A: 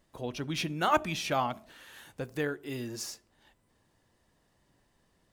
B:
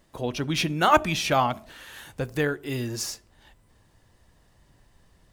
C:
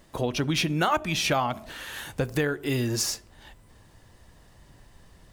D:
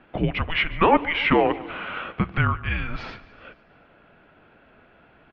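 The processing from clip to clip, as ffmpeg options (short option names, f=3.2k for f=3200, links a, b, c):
-af "asubboost=boost=2.5:cutoff=140,volume=7.5dB"
-af "acompressor=threshold=-29dB:ratio=4,volume=6dB"
-af "highpass=f=400:t=q:w=0.5412,highpass=f=400:t=q:w=1.307,lowpass=f=3.1k:t=q:w=0.5176,lowpass=f=3.1k:t=q:w=0.7071,lowpass=f=3.1k:t=q:w=1.932,afreqshift=-330,aecho=1:1:145|290|435|580|725:0.112|0.0651|0.0377|0.0219|0.0127,volume=7.5dB"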